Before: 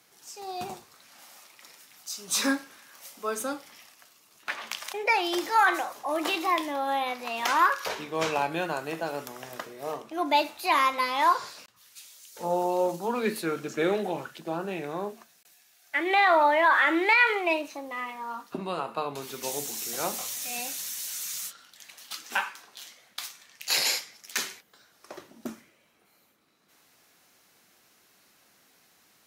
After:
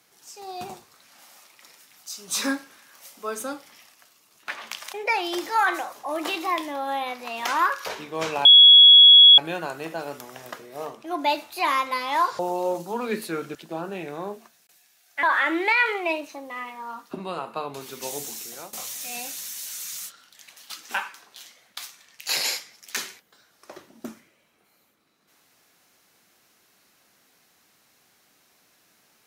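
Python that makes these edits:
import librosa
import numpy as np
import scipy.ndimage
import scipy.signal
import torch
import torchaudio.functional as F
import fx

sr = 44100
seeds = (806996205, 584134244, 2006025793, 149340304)

y = fx.edit(x, sr, fx.insert_tone(at_s=8.45, length_s=0.93, hz=3350.0, db=-7.0),
    fx.cut(start_s=11.46, length_s=1.07),
    fx.cut(start_s=13.69, length_s=0.62),
    fx.cut(start_s=15.99, length_s=0.65),
    fx.fade_out_to(start_s=19.71, length_s=0.43, floor_db=-19.0), tone=tone)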